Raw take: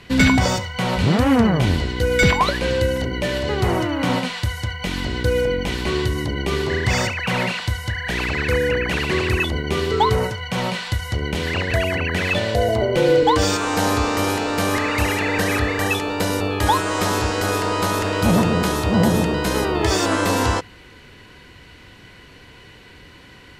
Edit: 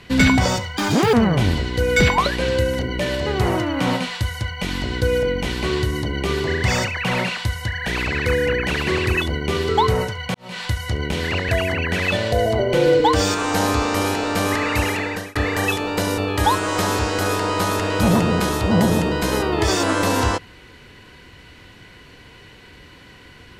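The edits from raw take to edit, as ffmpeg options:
-filter_complex "[0:a]asplit=5[a][b][c][d][e];[a]atrim=end=0.774[f];[b]atrim=start=0.77:end=1.36,asetpts=PTS-STARTPTS,asetrate=71442,aresample=44100,atrim=end_sample=16061,asetpts=PTS-STARTPTS[g];[c]atrim=start=1.356:end=10.57,asetpts=PTS-STARTPTS,afade=t=out:st=9.21:d=0.004:c=hsin[h];[d]atrim=start=10.57:end=15.58,asetpts=PTS-STARTPTS,afade=t=in:d=0.26:c=qua,afade=t=out:st=4.38:d=0.63:c=qsin[i];[e]atrim=start=15.58,asetpts=PTS-STARTPTS,afade=t=in:d=0.004:c=hsin[j];[f][g]acrossfade=d=0.004:c1=hsin:c2=hsin[k];[h][i][j]concat=n=3:v=0:a=1[l];[k][l]acrossfade=d=0.004:c1=hsin:c2=hsin"

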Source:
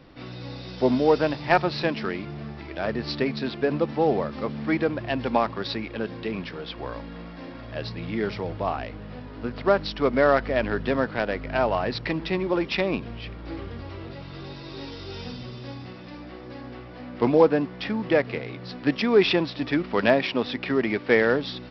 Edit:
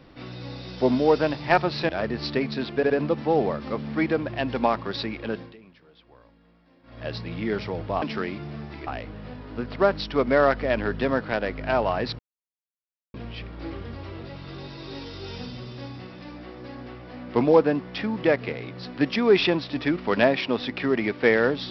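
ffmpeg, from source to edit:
-filter_complex "[0:a]asplit=10[a][b][c][d][e][f][g][h][i][j];[a]atrim=end=1.892[k];[b]atrim=start=2.738:end=3.682[l];[c]atrim=start=3.608:end=3.682[m];[d]atrim=start=3.608:end=6.27,asetpts=PTS-STARTPTS,afade=t=out:st=2.442:d=0.22:silence=0.1[n];[e]atrim=start=6.27:end=7.54,asetpts=PTS-STARTPTS,volume=-20dB[o];[f]atrim=start=7.54:end=8.732,asetpts=PTS-STARTPTS,afade=t=in:d=0.22:silence=0.1[p];[g]atrim=start=1.888:end=2.742[q];[h]atrim=start=8.728:end=12.05,asetpts=PTS-STARTPTS,afade=t=out:st=3.318:d=0.004:c=hsin[r];[i]atrim=start=12.05:end=13,asetpts=PTS-STARTPTS,volume=0[s];[j]atrim=start=13,asetpts=PTS-STARTPTS,afade=t=in:d=0.004:c=hsin[t];[k][l]acrossfade=d=0.004:c1=hsin:c2=hsin[u];[u][m]acrossfade=d=0.004:c1=hsin:c2=hsin[v];[n][o][p]concat=n=3:v=0:a=1[w];[v][w]acrossfade=d=0.004:c1=hsin:c2=hsin[x];[x][q]acrossfade=d=0.004:c1=hsin:c2=hsin[y];[r][s][t]concat=n=3:v=0:a=1[z];[y][z]acrossfade=d=0.004:c1=hsin:c2=hsin"

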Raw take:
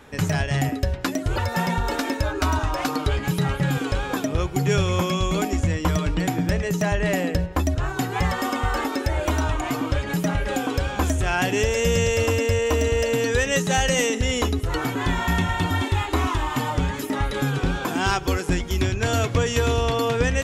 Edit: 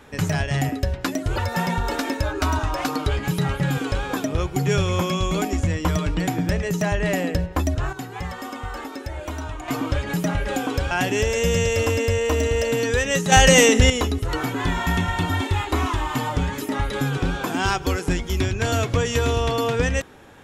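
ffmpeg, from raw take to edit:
-filter_complex "[0:a]asplit=6[a][b][c][d][e][f];[a]atrim=end=7.932[g];[b]atrim=start=7.928:end=9.682,asetpts=PTS-STARTPTS,volume=-8dB[h];[c]atrim=start=9.678:end=10.912[i];[d]atrim=start=11.318:end=13.732[j];[e]atrim=start=13.728:end=14.312,asetpts=PTS-STARTPTS,volume=8dB[k];[f]atrim=start=14.308[l];[g][h]acrossfade=d=0.004:c1=hsin:c2=hsin[m];[m][i]acrossfade=d=0.004:c1=hsin:c2=hsin[n];[n][j]acrossfade=d=0.004:c1=hsin:c2=hsin[o];[o][k]acrossfade=d=0.004:c1=hsin:c2=hsin[p];[p][l]acrossfade=d=0.004:c1=hsin:c2=hsin"

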